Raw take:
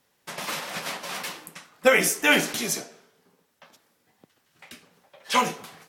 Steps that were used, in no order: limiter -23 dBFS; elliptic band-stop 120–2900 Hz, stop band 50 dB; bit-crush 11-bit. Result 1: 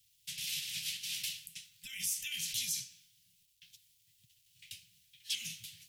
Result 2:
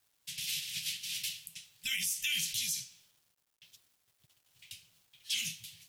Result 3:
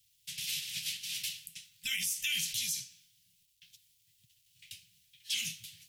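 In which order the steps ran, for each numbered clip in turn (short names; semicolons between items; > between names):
limiter > bit-crush > elliptic band-stop; elliptic band-stop > limiter > bit-crush; bit-crush > elliptic band-stop > limiter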